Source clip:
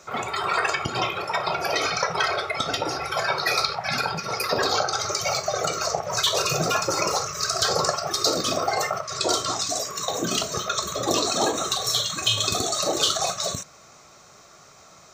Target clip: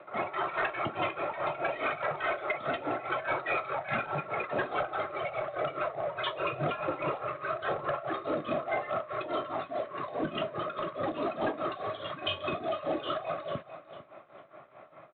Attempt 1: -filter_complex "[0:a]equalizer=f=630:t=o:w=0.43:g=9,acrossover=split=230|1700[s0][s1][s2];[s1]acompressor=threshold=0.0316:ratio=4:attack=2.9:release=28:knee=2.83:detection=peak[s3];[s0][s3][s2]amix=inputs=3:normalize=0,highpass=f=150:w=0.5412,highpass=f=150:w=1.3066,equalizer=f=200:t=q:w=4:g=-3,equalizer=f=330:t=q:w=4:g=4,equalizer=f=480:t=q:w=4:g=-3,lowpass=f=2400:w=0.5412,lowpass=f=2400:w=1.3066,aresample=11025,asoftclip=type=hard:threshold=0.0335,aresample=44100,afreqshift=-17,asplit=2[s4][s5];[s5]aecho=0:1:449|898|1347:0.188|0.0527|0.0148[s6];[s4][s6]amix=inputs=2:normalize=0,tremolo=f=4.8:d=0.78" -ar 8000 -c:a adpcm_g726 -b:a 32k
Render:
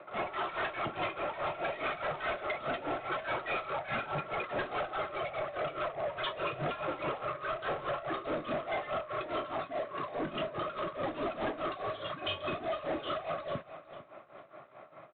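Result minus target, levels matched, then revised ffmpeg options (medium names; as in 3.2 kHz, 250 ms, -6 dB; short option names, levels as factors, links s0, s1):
hard clipper: distortion +11 dB
-filter_complex "[0:a]equalizer=f=630:t=o:w=0.43:g=9,acrossover=split=230|1700[s0][s1][s2];[s1]acompressor=threshold=0.0316:ratio=4:attack=2.9:release=28:knee=2.83:detection=peak[s3];[s0][s3][s2]amix=inputs=3:normalize=0,highpass=f=150:w=0.5412,highpass=f=150:w=1.3066,equalizer=f=200:t=q:w=4:g=-3,equalizer=f=330:t=q:w=4:g=4,equalizer=f=480:t=q:w=4:g=-3,lowpass=f=2400:w=0.5412,lowpass=f=2400:w=1.3066,aresample=11025,asoftclip=type=hard:threshold=0.075,aresample=44100,afreqshift=-17,asplit=2[s4][s5];[s5]aecho=0:1:449|898|1347:0.188|0.0527|0.0148[s6];[s4][s6]amix=inputs=2:normalize=0,tremolo=f=4.8:d=0.78" -ar 8000 -c:a adpcm_g726 -b:a 32k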